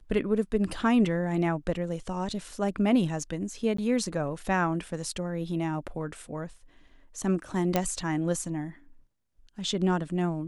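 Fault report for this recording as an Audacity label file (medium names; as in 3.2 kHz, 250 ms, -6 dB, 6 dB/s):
3.770000	3.780000	dropout 14 ms
7.760000	7.760000	pop -10 dBFS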